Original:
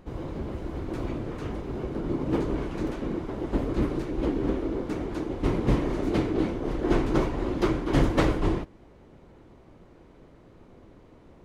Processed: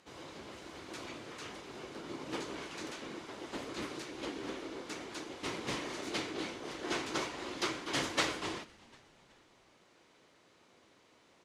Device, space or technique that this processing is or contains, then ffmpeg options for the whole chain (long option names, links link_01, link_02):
piezo pickup straight into a mixer: -filter_complex "[0:a]highpass=53,lowpass=6700,aderivative,lowshelf=frequency=260:gain=4.5,asplit=4[link_01][link_02][link_03][link_04];[link_02]adelay=373,afreqshift=-95,volume=-23.5dB[link_05];[link_03]adelay=746,afreqshift=-190,volume=-30.4dB[link_06];[link_04]adelay=1119,afreqshift=-285,volume=-37.4dB[link_07];[link_01][link_05][link_06][link_07]amix=inputs=4:normalize=0,volume=10dB"